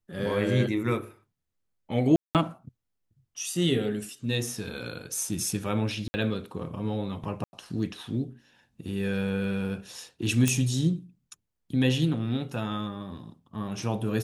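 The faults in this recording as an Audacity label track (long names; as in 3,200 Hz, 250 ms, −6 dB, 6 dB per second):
2.160000	2.350000	drop-out 188 ms
6.080000	6.140000	drop-out 60 ms
7.440000	7.530000	drop-out 91 ms
10.480000	10.480000	click −9 dBFS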